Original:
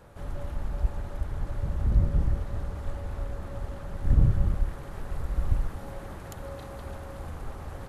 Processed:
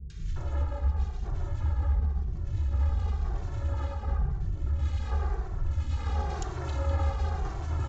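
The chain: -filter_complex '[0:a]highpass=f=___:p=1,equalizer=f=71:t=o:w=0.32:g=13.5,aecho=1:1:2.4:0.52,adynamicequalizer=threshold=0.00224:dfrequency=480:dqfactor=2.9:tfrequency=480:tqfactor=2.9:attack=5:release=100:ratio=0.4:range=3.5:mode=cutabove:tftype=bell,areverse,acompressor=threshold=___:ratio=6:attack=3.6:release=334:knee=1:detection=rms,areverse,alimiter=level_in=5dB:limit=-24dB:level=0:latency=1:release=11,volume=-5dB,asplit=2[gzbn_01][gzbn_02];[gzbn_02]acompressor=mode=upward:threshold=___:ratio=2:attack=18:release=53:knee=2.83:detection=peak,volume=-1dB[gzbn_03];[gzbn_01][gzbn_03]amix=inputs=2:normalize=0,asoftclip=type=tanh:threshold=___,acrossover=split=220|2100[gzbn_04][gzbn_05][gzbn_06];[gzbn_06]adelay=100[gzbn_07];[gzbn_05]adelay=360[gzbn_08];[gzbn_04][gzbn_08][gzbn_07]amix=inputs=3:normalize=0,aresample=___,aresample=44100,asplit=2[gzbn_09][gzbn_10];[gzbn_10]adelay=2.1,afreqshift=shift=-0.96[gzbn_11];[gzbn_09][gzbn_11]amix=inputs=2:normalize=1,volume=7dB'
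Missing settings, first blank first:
50, -31dB, -40dB, -24.5dB, 16000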